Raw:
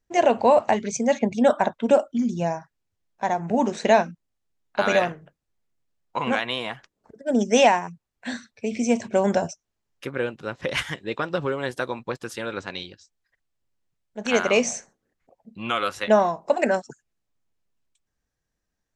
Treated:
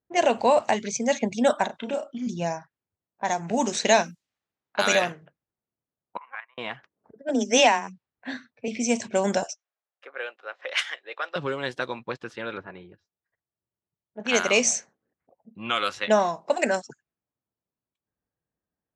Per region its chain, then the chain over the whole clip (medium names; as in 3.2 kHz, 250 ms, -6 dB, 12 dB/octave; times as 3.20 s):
1.66–2.27 s: compression 2.5:1, threshold -28 dBFS + doubling 32 ms -4.5 dB + tape noise reduction on one side only encoder only
3.28–4.95 s: treble shelf 5 kHz +9 dB + tape noise reduction on one side only encoder only
6.17–6.58 s: Chebyshev band-pass 1–2.2 kHz + expander -25 dBFS + level held to a coarse grid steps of 11 dB
7.29–8.68 s: low-pass 6.4 kHz + frequency shift +15 Hz
9.43–11.36 s: high-pass 570 Hz 24 dB/octave + peaking EQ 950 Hz -8 dB 0.21 oct
12.56–14.20 s: comb of notches 260 Hz + hard clipper -22.5 dBFS + low-pass that closes with the level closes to 1.6 kHz, closed at -33.5 dBFS
whole clip: level-controlled noise filter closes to 1 kHz, open at -18 dBFS; high-pass 91 Hz; treble shelf 2.6 kHz +11.5 dB; trim -3.5 dB